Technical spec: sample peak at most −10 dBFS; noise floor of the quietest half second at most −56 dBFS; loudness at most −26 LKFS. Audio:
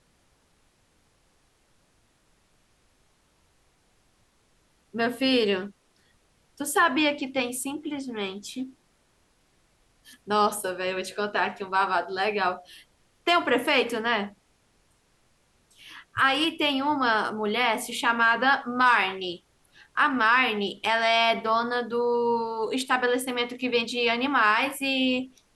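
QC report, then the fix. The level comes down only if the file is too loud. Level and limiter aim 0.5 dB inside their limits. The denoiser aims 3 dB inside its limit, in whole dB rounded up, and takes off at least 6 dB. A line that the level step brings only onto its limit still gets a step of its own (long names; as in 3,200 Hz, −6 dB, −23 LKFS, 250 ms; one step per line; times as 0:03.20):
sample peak −8.5 dBFS: out of spec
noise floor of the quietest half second −66 dBFS: in spec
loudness −24.5 LKFS: out of spec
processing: level −2 dB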